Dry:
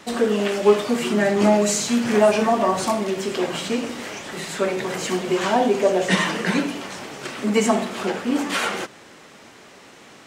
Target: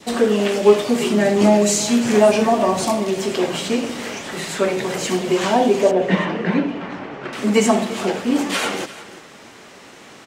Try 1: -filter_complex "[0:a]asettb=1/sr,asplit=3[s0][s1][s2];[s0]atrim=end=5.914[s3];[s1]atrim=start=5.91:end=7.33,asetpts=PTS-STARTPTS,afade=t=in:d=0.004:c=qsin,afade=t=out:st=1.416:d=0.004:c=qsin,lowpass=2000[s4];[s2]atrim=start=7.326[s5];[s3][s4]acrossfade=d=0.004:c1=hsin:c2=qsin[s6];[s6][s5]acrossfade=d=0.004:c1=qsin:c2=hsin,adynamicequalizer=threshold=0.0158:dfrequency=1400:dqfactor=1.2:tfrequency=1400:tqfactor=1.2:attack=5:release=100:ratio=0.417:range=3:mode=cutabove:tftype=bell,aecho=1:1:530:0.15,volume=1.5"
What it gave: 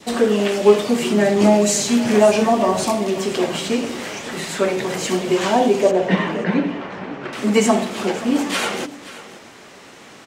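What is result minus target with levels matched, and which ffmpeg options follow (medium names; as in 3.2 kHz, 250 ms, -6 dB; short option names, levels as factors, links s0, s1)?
echo 187 ms late
-filter_complex "[0:a]asettb=1/sr,asplit=3[s0][s1][s2];[s0]atrim=end=5.914[s3];[s1]atrim=start=5.91:end=7.33,asetpts=PTS-STARTPTS,afade=t=in:d=0.004:c=qsin,afade=t=out:st=1.416:d=0.004:c=qsin,lowpass=2000[s4];[s2]atrim=start=7.326[s5];[s3][s4]acrossfade=d=0.004:c1=hsin:c2=qsin[s6];[s6][s5]acrossfade=d=0.004:c1=qsin:c2=hsin,adynamicequalizer=threshold=0.0158:dfrequency=1400:dqfactor=1.2:tfrequency=1400:tqfactor=1.2:attack=5:release=100:ratio=0.417:range=3:mode=cutabove:tftype=bell,aecho=1:1:343:0.15,volume=1.5"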